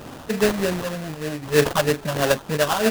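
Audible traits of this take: phasing stages 6, 3.2 Hz, lowest notch 380–4300 Hz; a quantiser's noise floor 8-bit, dither triangular; random-step tremolo; aliases and images of a low sample rate 2.2 kHz, jitter 20%

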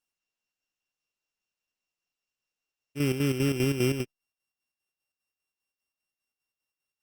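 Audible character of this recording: a buzz of ramps at a fixed pitch in blocks of 16 samples; chopped level 5 Hz, depth 60%, duty 60%; Opus

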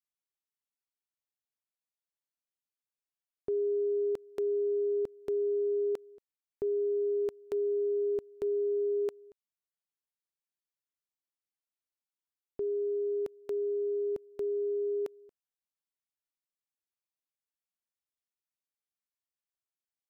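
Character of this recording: noise floor -95 dBFS; spectral tilt -0.5 dB/octave

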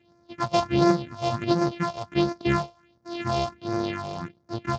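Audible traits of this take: a buzz of ramps at a fixed pitch in blocks of 128 samples; phasing stages 4, 1.4 Hz, lowest notch 270–3000 Hz; Speex

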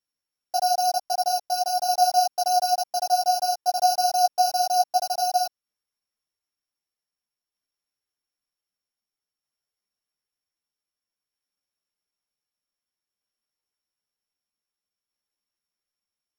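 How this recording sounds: a buzz of ramps at a fixed pitch in blocks of 8 samples; tremolo saw down 0.53 Hz, depth 30%; a shimmering, thickened sound

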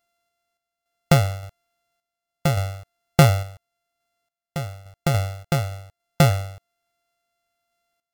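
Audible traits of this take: a buzz of ramps at a fixed pitch in blocks of 64 samples; random-step tremolo, depth 85%; AAC

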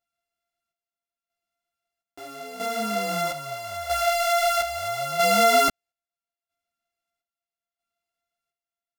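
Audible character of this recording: a buzz of ramps at a fixed pitch in blocks of 64 samples; chopped level 0.77 Hz, depth 65%, duty 55%; a shimmering, thickened sound

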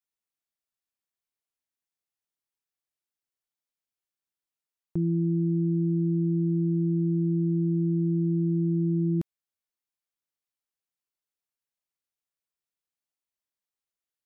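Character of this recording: noise floor -93 dBFS; spectral tilt -7.5 dB/octave

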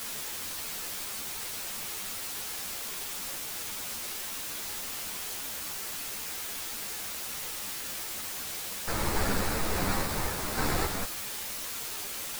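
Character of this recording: aliases and images of a low sample rate 3.1 kHz; random-step tremolo; a quantiser's noise floor 6-bit, dither triangular; a shimmering, thickened sound

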